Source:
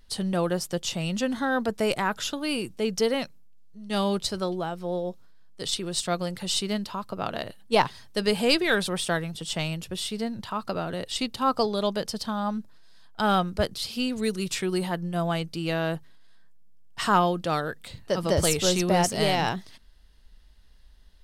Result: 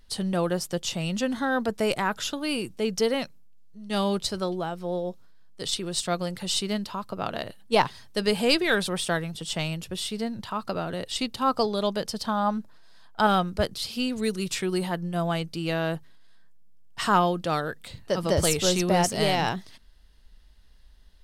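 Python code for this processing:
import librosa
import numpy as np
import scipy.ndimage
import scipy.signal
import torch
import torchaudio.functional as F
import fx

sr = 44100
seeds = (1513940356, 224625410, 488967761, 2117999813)

y = fx.peak_eq(x, sr, hz=880.0, db=5.5, octaves=2.2, at=(12.24, 13.27))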